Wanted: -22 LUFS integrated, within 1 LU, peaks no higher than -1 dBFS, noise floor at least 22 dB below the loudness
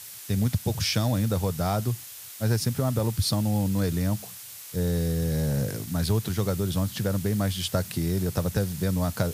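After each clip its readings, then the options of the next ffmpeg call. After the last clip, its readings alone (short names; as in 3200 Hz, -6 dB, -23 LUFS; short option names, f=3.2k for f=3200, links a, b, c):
noise floor -42 dBFS; noise floor target -49 dBFS; loudness -27.0 LUFS; peak -9.0 dBFS; loudness target -22.0 LUFS
-> -af "afftdn=nr=7:nf=-42"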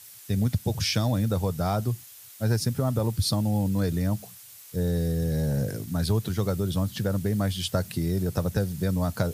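noise floor -48 dBFS; noise floor target -49 dBFS
-> -af "afftdn=nr=6:nf=-48"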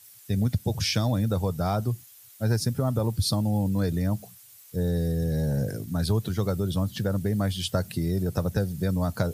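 noise floor -51 dBFS; loudness -27.0 LUFS; peak -9.5 dBFS; loudness target -22.0 LUFS
-> -af "volume=5dB"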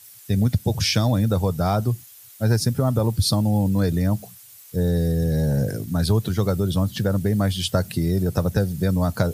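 loudness -22.0 LUFS; peak -4.5 dBFS; noise floor -46 dBFS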